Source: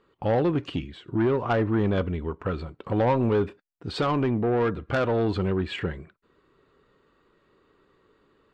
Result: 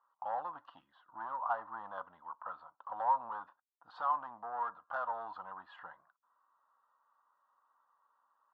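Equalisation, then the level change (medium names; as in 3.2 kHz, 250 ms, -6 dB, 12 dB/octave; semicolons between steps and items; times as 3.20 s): ladder band-pass 1.1 kHz, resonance 50%; distance through air 56 m; static phaser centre 960 Hz, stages 4; +4.0 dB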